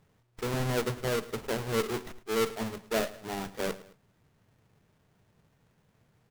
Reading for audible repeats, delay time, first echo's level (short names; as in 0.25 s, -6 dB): 2, 0.108 s, -18.0 dB